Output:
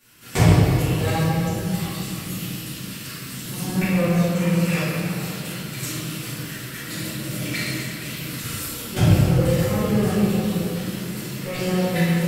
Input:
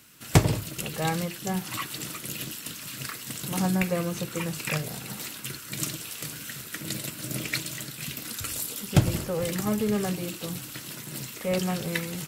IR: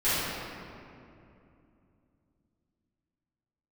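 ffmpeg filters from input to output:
-filter_complex "[0:a]asettb=1/sr,asplit=3[s0][s1][s2];[s0]atrim=end=1.134[s3];[s1]atrim=start=1.13:end=3.69,asetpts=PTS-STARTPTS,afade=t=in:d=0.004:c=qsin,afade=t=out:st=2.556:d=0.004:c=qsin,acrossover=split=320|3000[s4][s5][s6];[s5]acompressor=threshold=0.00355:ratio=2[s7];[s4][s7][s6]amix=inputs=3:normalize=0[s8];[s2]atrim=start=3.686[s9];[s3][s8]acrossfade=d=0.004:c1=hsin:c2=qsin[s10];[s10][s9]acrossfade=d=0.004:c1=qsin:c2=hsin[s11];[1:a]atrim=start_sample=2205[s12];[s11][s12]afir=irnorm=-1:irlink=0,volume=0.376"

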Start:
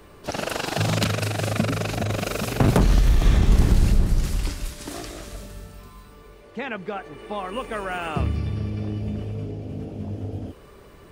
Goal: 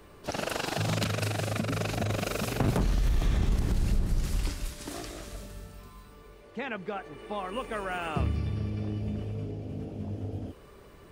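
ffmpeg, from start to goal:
-af "alimiter=limit=0.224:level=0:latency=1:release=160,volume=0.596"

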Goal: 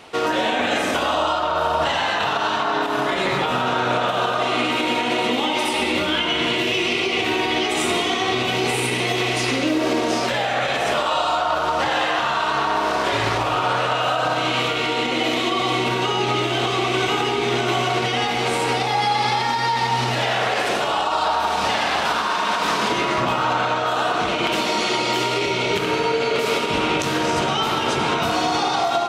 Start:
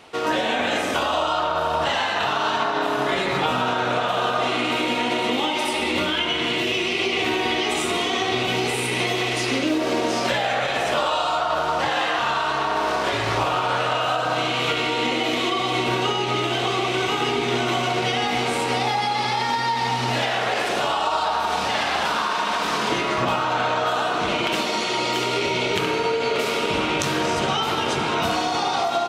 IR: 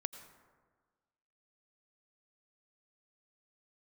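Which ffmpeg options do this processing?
-filter_complex "[0:a]alimiter=limit=0.178:level=0:latency=1:release=144[s0];[1:a]atrim=start_sample=2205[s1];[s0][s1]afir=irnorm=-1:irlink=0,volume=1.78"

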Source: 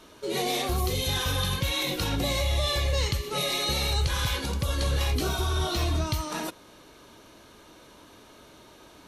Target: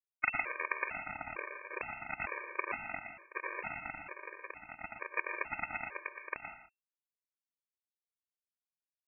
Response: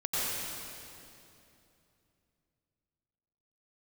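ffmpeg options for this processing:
-filter_complex "[0:a]highpass=f=240:w=0.5412,highpass=f=240:w=1.3066,lowshelf=f=400:g=2.5,acompressor=threshold=0.0251:ratio=4,asoftclip=type=hard:threshold=0.0299,asplit=4[s0][s1][s2][s3];[s1]asetrate=29433,aresample=44100,atempo=1.49831,volume=1[s4];[s2]asetrate=52444,aresample=44100,atempo=0.840896,volume=0.562[s5];[s3]asetrate=55563,aresample=44100,atempo=0.793701,volume=0.501[s6];[s0][s4][s5][s6]amix=inputs=4:normalize=0,acrusher=bits=3:mix=0:aa=0.000001,aecho=1:1:118:0.398,asplit=2[s7][s8];[1:a]atrim=start_sample=2205,afade=t=out:st=0.24:d=0.01,atrim=end_sample=11025,asetrate=41013,aresample=44100[s9];[s8][s9]afir=irnorm=-1:irlink=0,volume=0.266[s10];[s7][s10]amix=inputs=2:normalize=0,lowpass=f=2300:t=q:w=0.5098,lowpass=f=2300:t=q:w=0.6013,lowpass=f=2300:t=q:w=0.9,lowpass=f=2300:t=q:w=2.563,afreqshift=-2700,afftfilt=real='re*gt(sin(2*PI*1.1*pts/sr)*(1-2*mod(floor(b*sr/1024/310),2)),0)':imag='im*gt(sin(2*PI*1.1*pts/sr)*(1-2*mod(floor(b*sr/1024/310),2)),0)':win_size=1024:overlap=0.75,volume=2.24"

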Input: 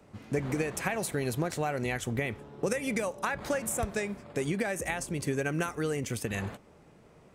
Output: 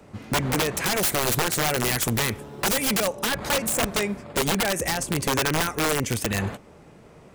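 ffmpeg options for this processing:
-filter_complex "[0:a]asettb=1/sr,asplit=3[s0][s1][s2];[s0]atrim=end=0.864[s3];[s1]atrim=start=0.86:end=2.99,asetpts=PTS-STARTPTS,afade=t=in:d=0.004:c=qsin,afade=t=out:st=2.126:d=0.004:c=qsin,aemphasis=mode=production:type=50kf[s4];[s2]atrim=start=2.986[s5];[s3][s4]acrossfade=d=0.004:c1=hsin:c2=qsin[s6];[s6][s5]acrossfade=d=0.004:c1=qsin:c2=hsin,aeval=exprs='(mod(16.8*val(0)+1,2)-1)/16.8':c=same,volume=2.51"

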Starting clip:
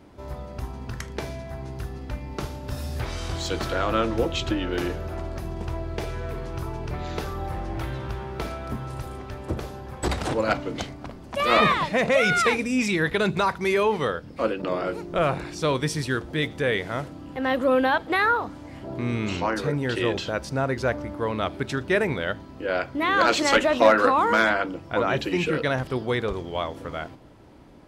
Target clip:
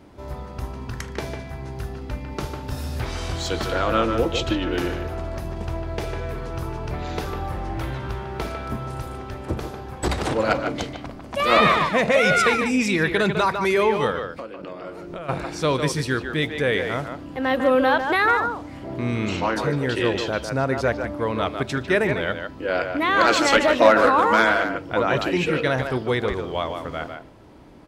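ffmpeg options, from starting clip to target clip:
-filter_complex "[0:a]asplit=3[s0][s1][s2];[s0]afade=t=out:st=14.26:d=0.02[s3];[s1]acompressor=threshold=0.02:ratio=16,afade=t=in:st=14.26:d=0.02,afade=t=out:st=15.28:d=0.02[s4];[s2]afade=t=in:st=15.28:d=0.02[s5];[s3][s4][s5]amix=inputs=3:normalize=0,asplit=2[s6][s7];[s7]adelay=150,highpass=300,lowpass=3400,asoftclip=type=hard:threshold=0.224,volume=0.501[s8];[s6][s8]amix=inputs=2:normalize=0,volume=1.26"

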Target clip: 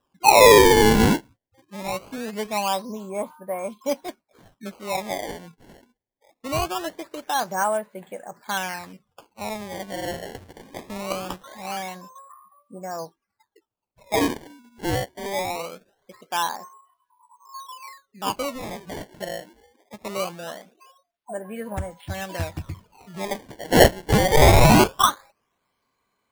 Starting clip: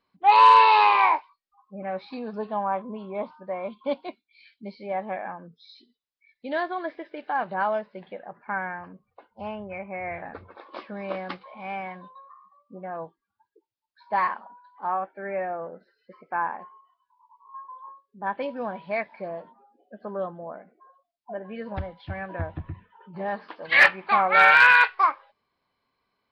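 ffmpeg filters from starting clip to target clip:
-filter_complex "[0:a]acrusher=samples=20:mix=1:aa=0.000001:lfo=1:lforange=32:lforate=0.22,asettb=1/sr,asplit=3[s0][s1][s2];[s0]atrim=end=18.534[s3];[s1]atrim=start=18.53:end=19.08,asetpts=PTS-STARTPTS,afade=t=in:d=0.004:c=qsin,afade=t=out:st=0.546:d=0.004:c=qsin,aeval=exprs='0.0282*(abs(mod(val(0)/0.0282+3,4)-2)-1)':c=same[s4];[s2]atrim=start=19.076[s5];[s3][s4]acrossfade=d=0.004:c1=hsin:c2=qsin[s6];[s6][s5]acrossfade=d=0.004:c1=qsin:c2=hsin,volume=1.33"

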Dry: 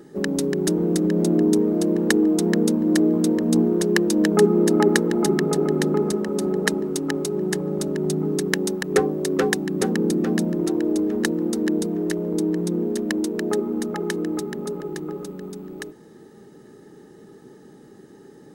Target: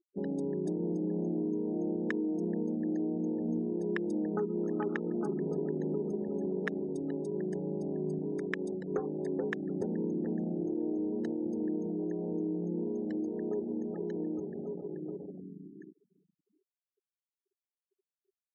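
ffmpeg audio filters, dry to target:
-filter_complex "[0:a]asettb=1/sr,asplit=3[s0][s1][s2];[s0]atrim=end=8.184[s3];[s1]atrim=start=8.18:end=8.75,asetpts=PTS-STARTPTS,afade=t=in:d=0.004:c=qsin,afade=t=out:st=0.566:d=0.004:c=qsin,equalizer=f=65:w=0.61:g=-11.5[s4];[s2]atrim=start=8.746[s5];[s3][s4]acrossfade=d=0.004:c1=hsin:c2=qsin[s6];[s6][s5]acrossfade=d=0.004:c1=qsin:c2=hsin,afwtdn=0.0631,asplit=3[s7][s8][s9];[s7]afade=t=out:st=4.37:d=0.02[s10];[s8]adynamicequalizer=threshold=0.00708:dfrequency=1300:dqfactor=5.6:tfrequency=1300:tqfactor=5.6:attack=5:release=100:ratio=0.375:range=3:mode=boostabove:tftype=bell,afade=t=in:st=4.37:d=0.02,afade=t=out:st=5.16:d=0.02[s11];[s9]afade=t=in:st=5.16:d=0.02[s12];[s10][s11][s12]amix=inputs=3:normalize=0,aecho=1:1:729|1458:0.0631|0.0158,acompressor=threshold=0.1:ratio=8,afftfilt=real='re*gte(hypot(re,im),0.01)':imag='im*gte(hypot(re,im),0.01)':win_size=1024:overlap=0.75,volume=0.355"

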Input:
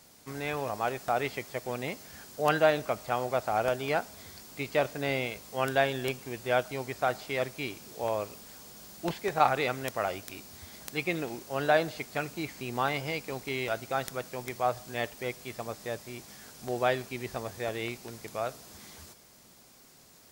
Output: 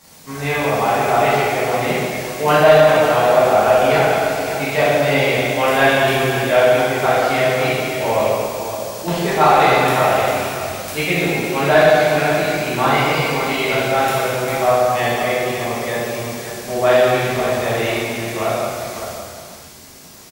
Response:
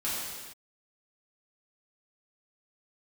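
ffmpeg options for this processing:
-filter_complex "[1:a]atrim=start_sample=2205,asetrate=32193,aresample=44100[s0];[0:a][s0]afir=irnorm=-1:irlink=0,acontrast=77,aecho=1:1:561:0.316,volume=0.891"

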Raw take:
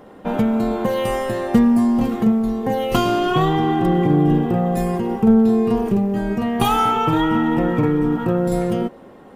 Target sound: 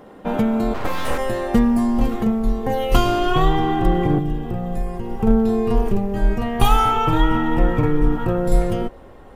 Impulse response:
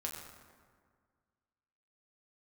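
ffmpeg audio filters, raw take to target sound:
-filter_complex "[0:a]asubboost=boost=12:cutoff=58,asplit=3[s0][s1][s2];[s0]afade=t=out:st=0.73:d=0.02[s3];[s1]aeval=exprs='abs(val(0))':c=same,afade=t=in:st=0.73:d=0.02,afade=t=out:st=1.17:d=0.02[s4];[s2]afade=t=in:st=1.17:d=0.02[s5];[s3][s4][s5]amix=inputs=3:normalize=0,asettb=1/sr,asplit=3[s6][s7][s8];[s6]atrim=end=4.184[s9];[s7]atrim=start=4.18:end=5.2,asetpts=PTS-STARTPTS,afade=t=in:d=0.004:c=qsin,afade=t=out:st=1.016:d=0.004:c=qsin,acrossover=split=260|1400|2900[s10][s11][s12][s13];[s10]acompressor=threshold=0.0891:ratio=4[s14];[s11]acompressor=threshold=0.0251:ratio=4[s15];[s12]acompressor=threshold=0.00251:ratio=4[s16];[s13]acompressor=threshold=0.002:ratio=4[s17];[s14][s15][s16][s17]amix=inputs=4:normalize=0[s18];[s8]atrim=start=5.196[s19];[s9][s18]acrossfade=d=0.004:c1=hsin:c2=qsin[s20];[s20][s19]acrossfade=d=0.004:c1=qsin:c2=hsin"

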